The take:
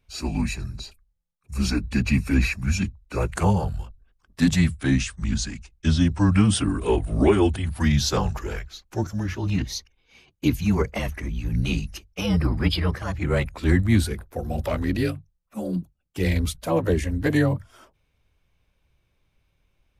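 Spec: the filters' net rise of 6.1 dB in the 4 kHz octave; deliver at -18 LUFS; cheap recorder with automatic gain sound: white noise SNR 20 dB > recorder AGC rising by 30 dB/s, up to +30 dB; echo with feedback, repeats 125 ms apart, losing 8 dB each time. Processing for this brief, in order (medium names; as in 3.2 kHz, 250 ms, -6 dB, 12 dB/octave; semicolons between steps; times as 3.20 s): peaking EQ 4 kHz +7.5 dB; feedback delay 125 ms, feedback 40%, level -8 dB; white noise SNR 20 dB; recorder AGC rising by 30 dB/s, up to +30 dB; trim +3 dB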